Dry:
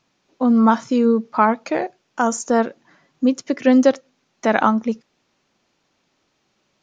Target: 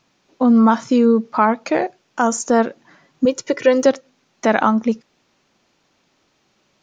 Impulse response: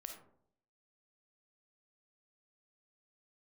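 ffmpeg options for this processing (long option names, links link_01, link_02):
-filter_complex "[0:a]asettb=1/sr,asplit=3[link_01][link_02][link_03];[link_01]atrim=end=3.254[link_04];[link_02]atrim=start=3.25:end=3.86,asetpts=PTS-STARTPTS,afade=type=in:duration=0.004:curve=qsin,afade=type=out:start_time=0.606:duration=0.004:curve=qsin,aecho=1:1:2.1:0.75,atrim=end_sample=26901[link_05];[link_03]atrim=start=3.856[link_06];[link_04][link_05]acrossfade=duration=0.004:curve1=hsin:curve2=qsin[link_07];[link_07][link_06]acrossfade=duration=0.004:curve1=qsin:curve2=hsin,asplit=2[link_08][link_09];[link_09]alimiter=limit=-12.5dB:level=0:latency=1:release=208,volume=2.5dB[link_10];[link_08][link_10]amix=inputs=2:normalize=0,volume=-3dB"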